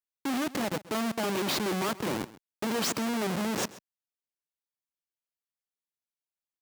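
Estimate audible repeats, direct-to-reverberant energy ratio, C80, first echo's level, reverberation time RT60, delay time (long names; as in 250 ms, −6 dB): 1, no reverb audible, no reverb audible, −18.5 dB, no reverb audible, 132 ms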